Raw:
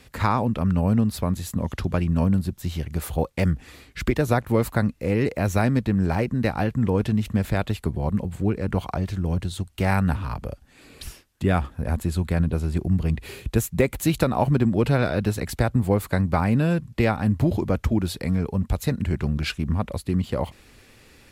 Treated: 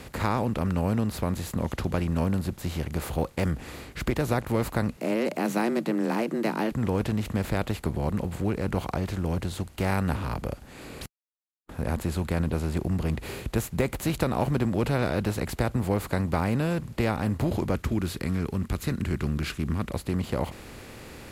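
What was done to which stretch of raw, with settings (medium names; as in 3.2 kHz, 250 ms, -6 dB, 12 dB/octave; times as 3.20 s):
4.97–6.72 s: frequency shift +110 Hz
11.06–11.69 s: mute
17.75–19.92 s: high-order bell 670 Hz -11.5 dB 1.2 oct
whole clip: spectral levelling over time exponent 0.6; trim -8 dB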